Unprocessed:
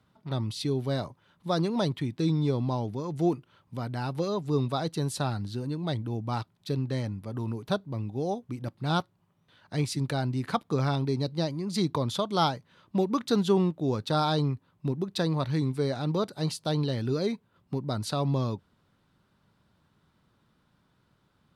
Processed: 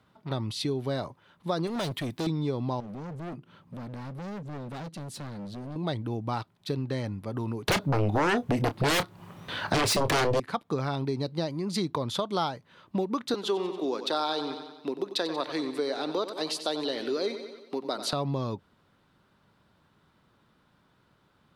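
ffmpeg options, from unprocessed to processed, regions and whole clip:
-filter_complex "[0:a]asettb=1/sr,asplit=3[a][b][c];[a]atrim=end=1.674[d];[b]atrim=start=1.67:end=2.27,asetpts=PTS-STARTPTS,afade=t=in:d=0.004:c=qsin,afade=t=out:st=0.596:d=0.004:c=qsin,aemphasis=mode=production:type=50kf,volume=30dB,asoftclip=hard,volume=-30dB[e];[c]atrim=start=2.266[f];[d][e]acrossfade=d=0.004:c1=hsin:c2=qsin[g];[g][f]acrossfade=d=0.004:c1=qsin:c2=hsin,asettb=1/sr,asplit=3[h][i][j];[h]atrim=end=2.804[k];[i]atrim=start=2.8:end=5.76,asetpts=PTS-STARTPTS,afade=t=in:d=0.004:c=qsin,afade=t=out:st=2.956:d=0.004:c=qsin,equalizer=f=190:t=o:w=1.1:g=13.5,acompressor=threshold=-50dB:ratio=1.5:attack=3.2:release=140:knee=1:detection=peak,asoftclip=type=hard:threshold=-38dB[l];[j]atrim=start=5.756[m];[k][l]acrossfade=d=0.004:c1=hsin:c2=qsin[n];[n][m]acrossfade=d=0.004:c1=qsin:c2=hsin,asettb=1/sr,asplit=3[o][p][q];[o]atrim=end=7.684[r];[p]atrim=start=7.68:end=10.4,asetpts=PTS-STARTPTS,afade=t=in:d=0.004:c=qsin,afade=t=out:st=2.716:d=0.004:c=qsin,aeval=exprs='0.211*sin(PI/2*7.94*val(0)/0.211)':c=same,asplit=2[s][t];[t]adelay=28,volume=-12dB[u];[s][u]amix=inputs=2:normalize=0,atrim=end_sample=119952[v];[q]atrim=start=10.396[w];[r][v]acrossfade=d=0.004:c1=hsin:c2=qsin[x];[x][w]acrossfade=d=0.004:c1=qsin:c2=hsin,asettb=1/sr,asplit=3[y][z][aa];[y]atrim=end=13.344[ab];[z]atrim=start=13.34:end=18.13,asetpts=PTS-STARTPTS,afade=t=in:d=0.004:c=qsin,afade=t=out:st=4.786:d=0.004:c=qsin,highpass=f=280:w=0.5412,highpass=f=280:w=1.3066,equalizer=f=3.9k:w=0.93:g=4.5,aecho=1:1:92|184|276|368|460|552:0.251|0.136|0.0732|0.0396|0.0214|0.0115,atrim=end_sample=211239[ac];[aa]atrim=start=18.126[ad];[ab][ac]acrossfade=d=0.004:c1=hsin:c2=qsin[ae];[ae][ad]acrossfade=d=0.004:c1=qsin:c2=hsin,bass=f=250:g=-5,treble=f=4k:g=-4,acompressor=threshold=-32dB:ratio=3,volume=5dB"

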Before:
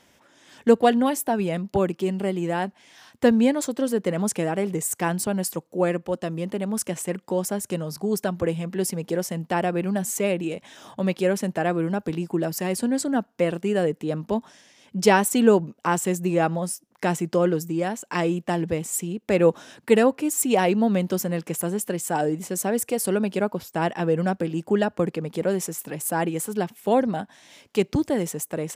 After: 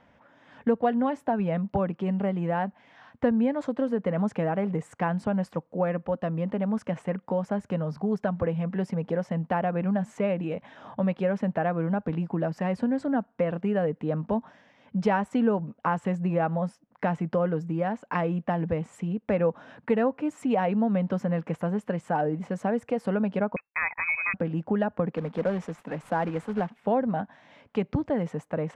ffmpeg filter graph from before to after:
-filter_complex "[0:a]asettb=1/sr,asplit=3[a][b][c];[a]atrim=end=23.564[d];[b]atrim=start=23.56:end=24.34,asetpts=PTS-STARTPTS,afade=t=in:d=0.004:c=qsin,afade=t=out:st=0.776:d=0.004:c=qsin,agate=range=-31dB:threshold=-34dB:ratio=16:release=100:detection=peak,lowpass=f=2.3k:t=q:w=0.5098,lowpass=f=2.3k:t=q:w=0.6013,lowpass=f=2.3k:t=q:w=0.9,lowpass=f=2.3k:t=q:w=2.563,afreqshift=-2700[e];[c]atrim=start=24.336[f];[d][e]acrossfade=d=0.004:c1=hsin:c2=qsin[g];[g][f]acrossfade=d=0.004:c1=qsin:c2=hsin,asettb=1/sr,asplit=3[h][i][j];[h]atrim=end=25.124[k];[i]atrim=start=25.12:end=26.78,asetpts=PTS-STARTPTS,afade=t=in:d=0.004:c=qsin,afade=t=out:st=1.656:d=0.004:c=qsin,highpass=f=160:w=0.5412,highpass=f=160:w=1.3066,acrusher=bits=3:mode=log:mix=0:aa=0.000001[l];[j]atrim=start=26.776[m];[k][l]acrossfade=d=0.004:c1=hsin:c2=qsin[n];[n][m]acrossfade=d=0.004:c1=qsin:c2=hsin,lowpass=1.6k,equalizer=f=360:t=o:w=0.32:g=-13.5,acompressor=threshold=-26dB:ratio=2.5,volume=2.5dB"

